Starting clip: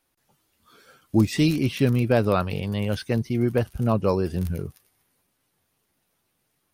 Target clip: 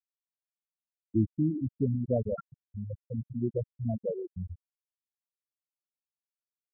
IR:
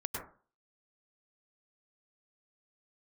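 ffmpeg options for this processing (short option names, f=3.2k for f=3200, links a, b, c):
-filter_complex "[0:a]asettb=1/sr,asplit=3[a][b][c];[a]atrim=end=2.944[d];[b]atrim=start=2.94:end=4.11,asetpts=PTS-STARTPTS,afade=t=in:d=0.004:c=qsin,afade=t=out:st=1.166:d=0.004:c=qsin,bandreject=f=50:t=h:w=6,bandreject=f=100:t=h:w=6,bandreject=f=150:t=h:w=6,bandreject=f=200:t=h:w=6,bandreject=f=250:t=h:w=6,bandreject=f=300:t=h:w=6,bandreject=f=350:t=h:w=6,bandreject=f=400:t=h:w=6,bandreject=f=450:t=h:w=6[e];[c]atrim=start=4.106[f];[d][e]acrossfade=d=0.004:c1=hsin:c2=qsin[g];[g][f]acrossfade=d=0.004:c1=qsin:c2=hsin,asplit=2[h][i];[i]aecho=0:1:118|236:0.2|0.0319[j];[h][j]amix=inputs=2:normalize=0,afftfilt=real='re*gte(hypot(re,im),0.501)':imag='im*gte(hypot(re,im),0.501)':win_size=1024:overlap=0.75,volume=-7dB"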